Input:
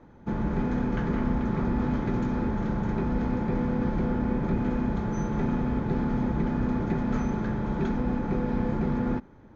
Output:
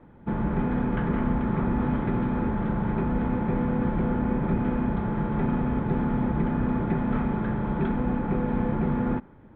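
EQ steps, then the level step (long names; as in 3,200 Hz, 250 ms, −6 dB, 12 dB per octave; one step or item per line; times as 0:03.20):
Butterworth low-pass 3,500 Hz 48 dB per octave
parametric band 160 Hz +2.5 dB 0.88 octaves
dynamic equaliser 1,000 Hz, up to +3 dB, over −45 dBFS, Q 0.79
0.0 dB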